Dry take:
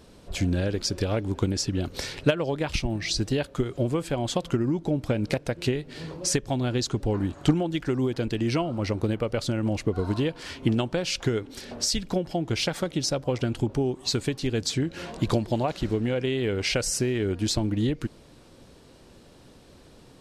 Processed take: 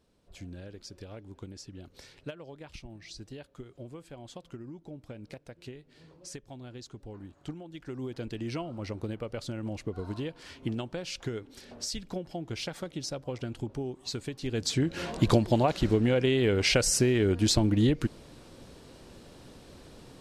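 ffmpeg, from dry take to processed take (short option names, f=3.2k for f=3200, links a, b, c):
-af "volume=1.5dB,afade=t=in:st=7.65:d=0.56:silence=0.354813,afade=t=in:st=14.36:d=0.64:silence=0.281838"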